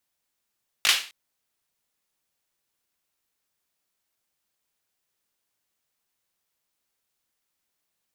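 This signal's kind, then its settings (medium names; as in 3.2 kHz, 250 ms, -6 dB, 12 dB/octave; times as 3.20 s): hand clap length 0.26 s, bursts 3, apart 19 ms, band 2.8 kHz, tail 0.37 s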